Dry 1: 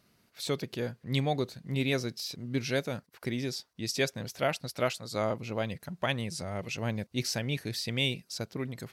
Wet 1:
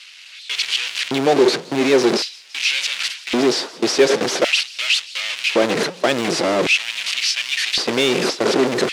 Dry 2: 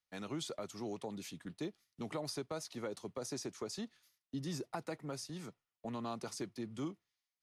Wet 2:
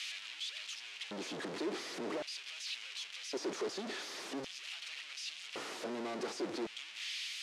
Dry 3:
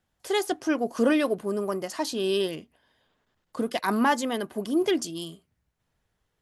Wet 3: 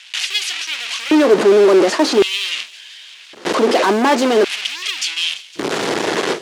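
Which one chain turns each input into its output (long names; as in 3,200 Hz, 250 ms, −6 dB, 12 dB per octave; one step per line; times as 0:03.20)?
linear delta modulator 64 kbit/s, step −26 dBFS
leveller curve on the samples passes 1
low-shelf EQ 190 Hz +10.5 dB
in parallel at 0 dB: brickwall limiter −16 dBFS
on the sum: noise gate with hold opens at −11 dBFS
band-pass filter 150–5,300 Hz
gain into a clipping stage and back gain 16 dB
auto-filter high-pass square 0.45 Hz 370–2,700 Hz
on a send: delay with a high-pass on its return 169 ms, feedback 80%, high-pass 4,000 Hz, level −19 dB
on the sum: level +4 dB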